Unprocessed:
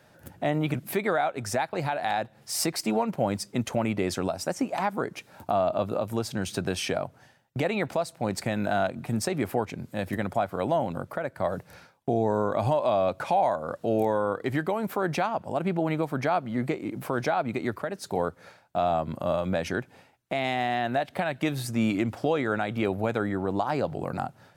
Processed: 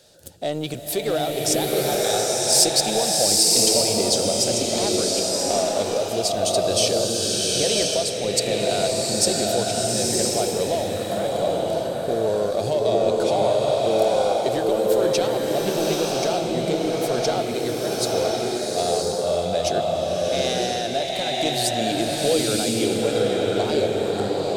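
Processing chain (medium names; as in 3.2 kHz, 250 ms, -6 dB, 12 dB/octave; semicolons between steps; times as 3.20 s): in parallel at -4.5 dB: overload inside the chain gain 25 dB; on the sum: ten-band graphic EQ 125 Hz -7 dB, 250 Hz -7 dB, 500 Hz +6 dB, 1 kHz -11 dB, 2 kHz -9 dB, 4 kHz +10 dB, 8 kHz +9 dB; swelling reverb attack 1000 ms, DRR -3.5 dB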